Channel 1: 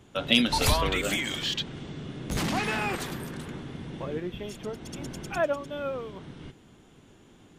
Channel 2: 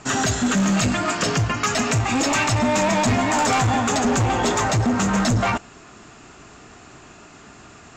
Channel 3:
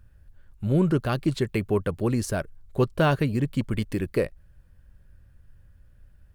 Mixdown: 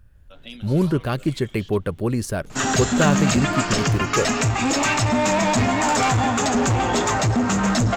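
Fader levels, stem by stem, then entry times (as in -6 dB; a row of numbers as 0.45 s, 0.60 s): -18.0 dB, 0.0 dB, +2.0 dB; 0.15 s, 2.50 s, 0.00 s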